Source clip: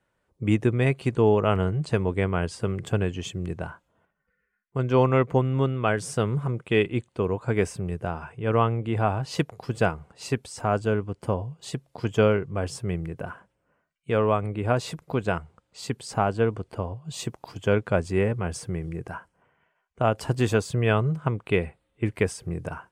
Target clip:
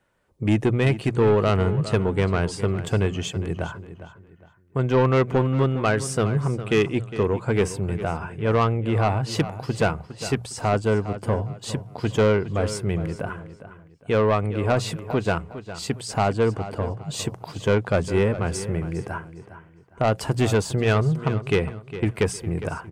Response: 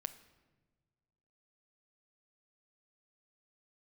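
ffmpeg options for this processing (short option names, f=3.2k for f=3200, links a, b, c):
-filter_complex "[0:a]bandreject=f=60:t=h:w=6,bandreject=f=120:t=h:w=6,bandreject=f=180:t=h:w=6,asoftclip=type=tanh:threshold=-18dB,asplit=2[a][b];[b]adelay=408,lowpass=f=4.9k:p=1,volume=-13dB,asplit=2[c][d];[d]adelay=408,lowpass=f=4.9k:p=1,volume=0.31,asplit=2[e][f];[f]adelay=408,lowpass=f=4.9k:p=1,volume=0.31[g];[a][c][e][g]amix=inputs=4:normalize=0,volume=5dB"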